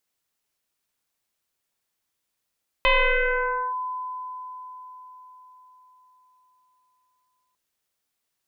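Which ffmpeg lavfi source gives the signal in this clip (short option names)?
-f lavfi -i "aevalsrc='0.188*pow(10,-3*t/4.8)*sin(2*PI*1010*t+3.9*clip(1-t/0.89,0,1)*sin(2*PI*0.51*1010*t))':d=4.7:s=44100"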